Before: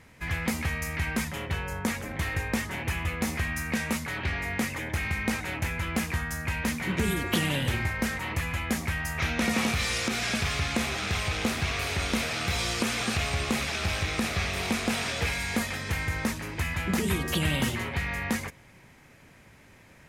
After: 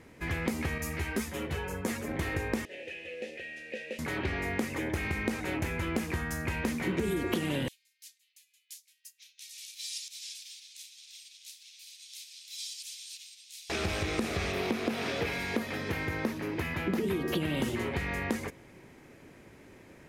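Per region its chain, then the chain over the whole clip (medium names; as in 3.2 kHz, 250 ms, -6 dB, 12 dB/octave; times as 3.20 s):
0.78–2.08 s: treble shelf 4.9 kHz +6 dB + three-phase chorus
2.65–3.99 s: one-bit delta coder 64 kbps, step -35.5 dBFS + vowel filter e + resonant high shelf 2.2 kHz +8 dB, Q 1.5
7.68–13.70 s: inverse Chebyshev high-pass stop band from 830 Hz, stop band 70 dB + upward expansion 2.5:1, over -47 dBFS
14.52–17.57 s: high-pass 96 Hz + peaking EQ 8 kHz -10 dB 0.82 oct
whole clip: peaking EQ 360 Hz +11.5 dB 1.3 oct; compression, threshold -24 dBFS; trim -3 dB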